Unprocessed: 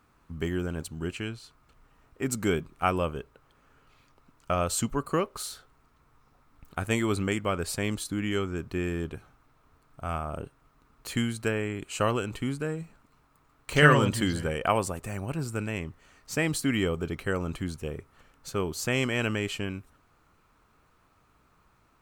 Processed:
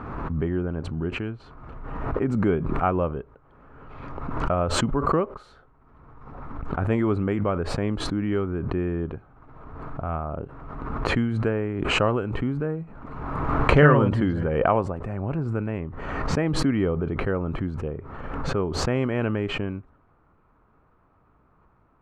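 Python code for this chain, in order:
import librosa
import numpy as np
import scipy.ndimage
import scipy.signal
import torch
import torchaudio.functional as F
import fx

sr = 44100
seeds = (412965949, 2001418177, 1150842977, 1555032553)

y = scipy.signal.sosfilt(scipy.signal.butter(2, 1200.0, 'lowpass', fs=sr, output='sos'), x)
y = fx.pre_swell(y, sr, db_per_s=33.0)
y = F.gain(torch.from_numpy(y), 4.0).numpy()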